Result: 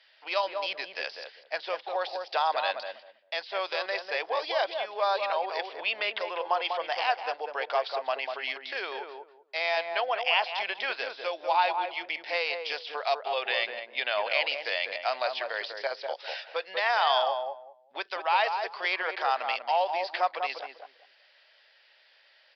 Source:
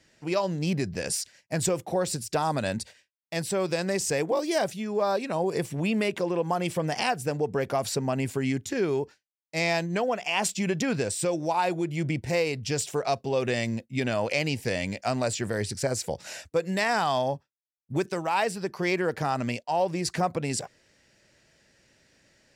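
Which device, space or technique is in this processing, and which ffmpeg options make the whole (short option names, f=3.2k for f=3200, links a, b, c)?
musical greeting card: -filter_complex "[0:a]asettb=1/sr,asplit=3[a][b][c];[a]atrim=end=13.214[d];[b]atrim=start=13.21:end=14.51,asetpts=PTS-STARTPTS,afade=t=in:d=0.004:c=qsin,afade=t=out:st=1.296:d=0.004:c=qsin,lowpass=f=4.6k:w=0.5412,lowpass=f=4.6k:w=1.3066[e];[c]atrim=start=14.506[f];[d][e]acrossfade=d=0.004:c1=hsin:c2=qsin[g];[g][f]acrossfade=d=0.004:c1=qsin:c2=hsin,deesser=0.8,aresample=11025,aresample=44100,highpass=f=650:w=0.5412,highpass=f=650:w=1.3066,lowshelf=f=340:g=-4.5,equalizer=f=3.3k:t=o:w=0.42:g=7,asplit=2[h][i];[i]adelay=196,lowpass=f=860:p=1,volume=-3dB,asplit=2[j][k];[k]adelay=196,lowpass=f=860:p=1,volume=0.24,asplit=2[l][m];[m]adelay=196,lowpass=f=860:p=1,volume=0.24[n];[h][j][l][n]amix=inputs=4:normalize=0,volume=3dB"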